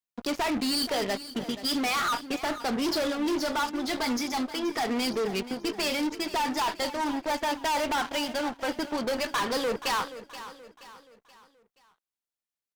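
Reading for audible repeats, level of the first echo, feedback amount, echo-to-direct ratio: 3, −14.0 dB, 43%, −13.0 dB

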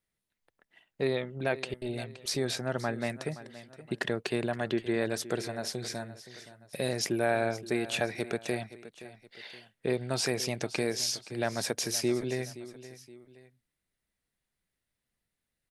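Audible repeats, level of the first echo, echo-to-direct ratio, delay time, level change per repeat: 2, −15.5 dB, −15.0 dB, 521 ms, −7.5 dB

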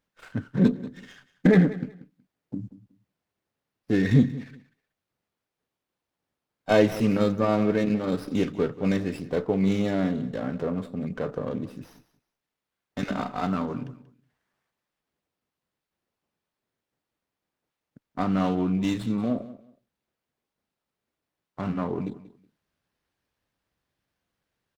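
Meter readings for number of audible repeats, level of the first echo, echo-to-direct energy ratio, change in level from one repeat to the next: 2, −17.0 dB, −17.0 dB, −13.5 dB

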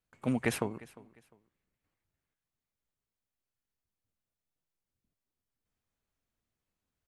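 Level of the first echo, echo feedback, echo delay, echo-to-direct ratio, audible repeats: −21.0 dB, 28%, 352 ms, −20.5 dB, 2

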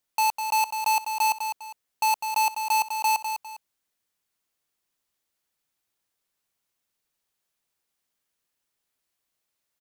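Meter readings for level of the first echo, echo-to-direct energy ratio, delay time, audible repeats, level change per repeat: −7.5 dB, −7.0 dB, 202 ms, 2, −10.0 dB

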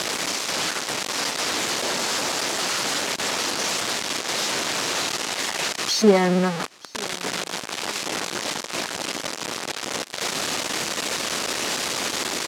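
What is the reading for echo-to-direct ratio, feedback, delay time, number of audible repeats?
−23.5 dB, 40%, 929 ms, 2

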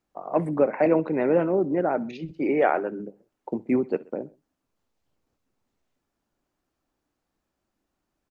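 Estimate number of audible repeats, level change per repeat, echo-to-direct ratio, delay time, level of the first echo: 2, −5.0 dB, −21.0 dB, 65 ms, −22.0 dB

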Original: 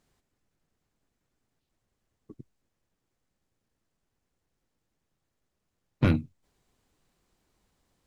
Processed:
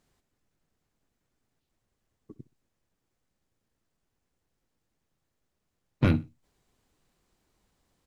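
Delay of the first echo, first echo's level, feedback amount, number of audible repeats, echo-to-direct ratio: 62 ms, −21.5 dB, 31%, 2, −21.0 dB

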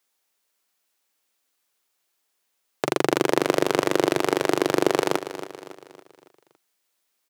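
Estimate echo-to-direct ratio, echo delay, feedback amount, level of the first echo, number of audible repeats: −11.0 dB, 279 ms, 46%, −12.0 dB, 4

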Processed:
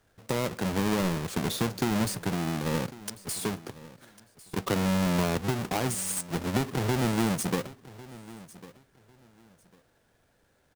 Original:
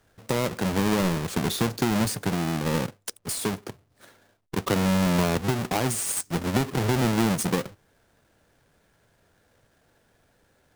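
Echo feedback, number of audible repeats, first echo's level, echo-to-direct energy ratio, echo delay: 22%, 2, −19.0 dB, −19.0 dB, 1,100 ms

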